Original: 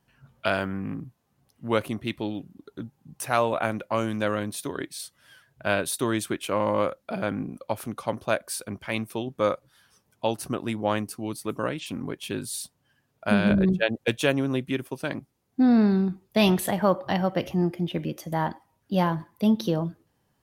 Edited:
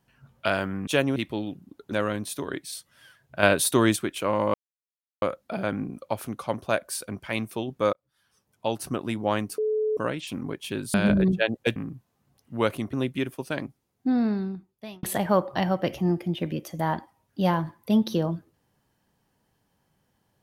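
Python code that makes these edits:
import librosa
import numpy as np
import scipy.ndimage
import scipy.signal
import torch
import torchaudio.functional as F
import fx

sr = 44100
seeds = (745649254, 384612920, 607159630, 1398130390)

y = fx.edit(x, sr, fx.swap(start_s=0.87, length_s=1.17, other_s=14.17, other_length_s=0.29),
    fx.cut(start_s=2.8, length_s=1.39),
    fx.clip_gain(start_s=5.7, length_s=0.53, db=5.5),
    fx.insert_silence(at_s=6.81, length_s=0.68),
    fx.fade_in_span(start_s=9.52, length_s=0.9),
    fx.bleep(start_s=11.17, length_s=0.39, hz=431.0, db=-22.0),
    fx.cut(start_s=12.53, length_s=0.82),
    fx.fade_out_span(start_s=15.12, length_s=1.44), tone=tone)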